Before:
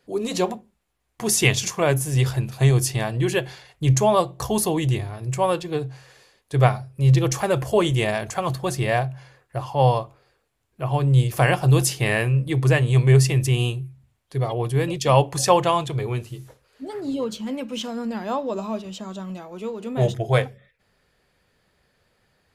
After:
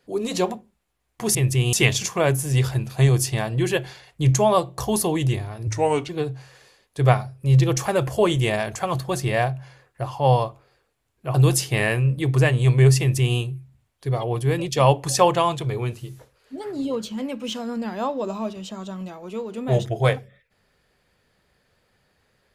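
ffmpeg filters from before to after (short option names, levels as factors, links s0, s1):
-filter_complex "[0:a]asplit=6[s0][s1][s2][s3][s4][s5];[s0]atrim=end=1.352[s6];[s1]atrim=start=13.278:end=13.662[s7];[s2]atrim=start=1.348:end=5.294[s8];[s3]atrim=start=5.29:end=5.64,asetpts=PTS-STARTPTS,asetrate=36603,aresample=44100,atrim=end_sample=18596,asetpts=PTS-STARTPTS[s9];[s4]atrim=start=5.636:end=10.892[s10];[s5]atrim=start=11.628[s11];[s6][s7]acrossfade=d=0.004:c1=hsin:c2=hsin[s12];[s12][s8]acrossfade=d=0.004:c1=hsin:c2=hsin[s13];[s13][s9]acrossfade=d=0.004:c1=hsin:c2=hsin[s14];[s14][s10]acrossfade=d=0.004:c1=hsin:c2=hsin[s15];[s15][s11]acrossfade=d=0.004:c1=hsin:c2=hsin"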